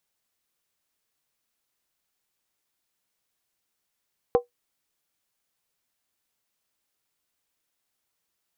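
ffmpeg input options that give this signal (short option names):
-f lavfi -i "aevalsrc='0.266*pow(10,-3*t/0.13)*sin(2*PI*484*t)+0.106*pow(10,-3*t/0.103)*sin(2*PI*771.5*t)+0.0422*pow(10,-3*t/0.089)*sin(2*PI*1033.8*t)+0.0168*pow(10,-3*t/0.086)*sin(2*PI*1111.3*t)+0.00668*pow(10,-3*t/0.08)*sin(2*PI*1284.1*t)':d=0.63:s=44100"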